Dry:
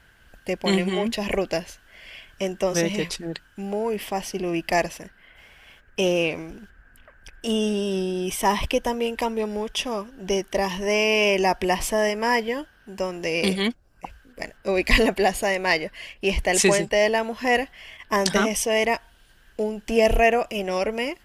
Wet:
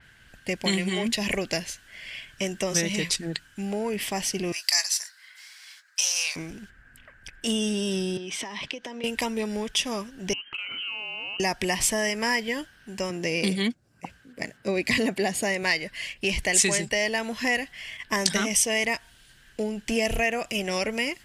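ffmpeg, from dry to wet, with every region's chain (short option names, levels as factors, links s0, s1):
-filter_complex "[0:a]asettb=1/sr,asplit=3[s0][s1][s2];[s0]atrim=end=4.524[s3];[s1]atrim=start=4.52:end=6.36,asetpts=PTS-STARTPTS,afade=t=in:d=0.004:c=qsin,afade=t=out:st=1.836:d=0.004:c=qsin,highpass=f=1000:w=0.5412,highpass=f=1000:w=1.3066,highshelf=f=3600:t=q:w=3:g=7,asplit=2[s4][s5];[s5]adelay=20,volume=0.237[s6];[s4][s6]amix=inputs=2:normalize=0,atrim=end_sample=81144[s7];[s2]atrim=start=6.356[s8];[s3][s7]acrossfade=d=0.004:c1=hsin:c2=qsin[s9];[s9][s8]acrossfade=d=0.004:c1=qsin:c2=hsin,asettb=1/sr,asplit=3[s10][s11][s12];[s10]atrim=end=8.174[s13];[s11]atrim=start=8.17:end=9.04,asetpts=PTS-STARTPTS,afade=t=in:d=0.004:c=qsin,afade=t=out:st=0.866:d=0.004:c=qsin,acrossover=split=170 5700:gain=0.0708 1 0.0631[s14][s15][s16];[s14][s15][s16]amix=inputs=3:normalize=0,acompressor=threshold=0.0282:ratio=12:attack=3.2:release=140:knee=1:detection=peak[s17];[s12]atrim=start=9.036[s18];[s13][s17]acrossfade=d=0.004:c1=hsin:c2=qsin[s19];[s19][s18]acrossfade=d=0.004:c1=qsin:c2=hsin,asettb=1/sr,asplit=3[s20][s21][s22];[s20]atrim=end=10.334[s23];[s21]atrim=start=10.33:end=11.4,asetpts=PTS-STARTPTS,afade=t=in:d=0.004:c=qsin,afade=t=out:st=1.066:d=0.004:c=qsin,lowpass=f=2700:t=q:w=0.5098,lowpass=f=2700:t=q:w=0.6013,lowpass=f=2700:t=q:w=0.9,lowpass=f=2700:t=q:w=2.563,afreqshift=-3200,acompressor=threshold=0.02:ratio=8:attack=3.2:release=140:knee=1:detection=peak[s24];[s22]atrim=start=11.396[s25];[s23][s24]acrossfade=d=0.004:c1=hsin:c2=qsin[s26];[s26][s25]acrossfade=d=0.004:c1=qsin:c2=hsin,asettb=1/sr,asplit=3[s27][s28][s29];[s27]atrim=end=13.104[s30];[s28]atrim=start=13.1:end=15.63,asetpts=PTS-STARTPTS,afade=t=in:d=0.004:c=qsin,afade=t=out:st=2.526:d=0.004:c=qsin,highpass=120,tiltshelf=f=830:g=4[s31];[s29]atrim=start=15.626[s32];[s30][s31]acrossfade=d=0.004:c1=hsin:c2=qsin[s33];[s33][s32]acrossfade=d=0.004:c1=qsin:c2=hsin,equalizer=f=125:t=o:w=1:g=9,equalizer=f=250:t=o:w=1:g=4,equalizer=f=2000:t=o:w=1:g=8,equalizer=f=4000:t=o:w=1:g=6,equalizer=f=8000:t=o:w=1:g=8,acompressor=threshold=0.112:ratio=2.5,adynamicequalizer=threshold=0.0158:dfrequency=4500:dqfactor=0.7:tfrequency=4500:tqfactor=0.7:attack=5:release=100:ratio=0.375:range=3:mode=boostabove:tftype=highshelf,volume=0.562"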